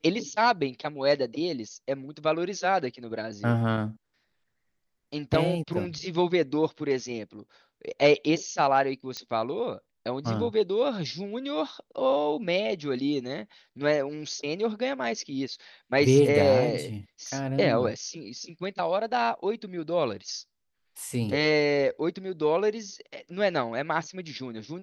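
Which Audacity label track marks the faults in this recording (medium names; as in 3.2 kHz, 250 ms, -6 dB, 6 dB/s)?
9.170000	9.170000	pop -19 dBFS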